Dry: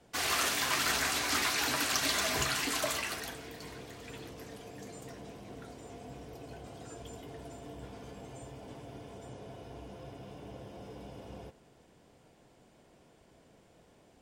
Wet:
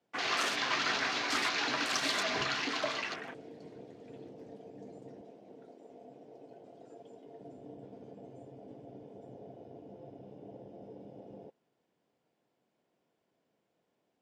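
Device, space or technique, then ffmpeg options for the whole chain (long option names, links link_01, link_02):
over-cleaned archive recording: -filter_complex "[0:a]highpass=170,lowpass=6000,afwtdn=0.00708,asettb=1/sr,asplit=3[link_01][link_02][link_03];[link_01]atrim=end=5.214[link_04];[link_02]atrim=start=5.21:end=7.41,asetpts=PTS-STARTPTS,afade=type=in:duration=0.004:curve=qsin,afade=type=out:start_time=2.196:duration=0.004:curve=qsin,highpass=frequency=410:poles=1[link_05];[link_03]atrim=start=7.406[link_06];[link_04][link_05]acrossfade=duration=0.004:curve1=hsin:curve2=qsin[link_07];[link_07][link_06]acrossfade=duration=0.004:curve1=qsin:curve2=hsin"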